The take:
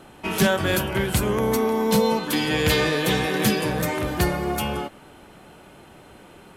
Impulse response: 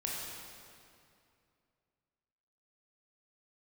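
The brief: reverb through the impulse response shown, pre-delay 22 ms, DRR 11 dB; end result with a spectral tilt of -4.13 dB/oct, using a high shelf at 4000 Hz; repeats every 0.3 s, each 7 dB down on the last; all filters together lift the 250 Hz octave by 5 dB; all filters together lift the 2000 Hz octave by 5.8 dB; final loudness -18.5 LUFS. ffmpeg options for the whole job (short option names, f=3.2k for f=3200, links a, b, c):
-filter_complex "[0:a]equalizer=f=250:t=o:g=6.5,equalizer=f=2k:t=o:g=5.5,highshelf=f=4k:g=7.5,aecho=1:1:300|600|900|1200|1500:0.447|0.201|0.0905|0.0407|0.0183,asplit=2[a][b];[1:a]atrim=start_sample=2205,adelay=22[c];[b][c]afir=irnorm=-1:irlink=0,volume=-14.5dB[d];[a][d]amix=inputs=2:normalize=0,volume=-1.5dB"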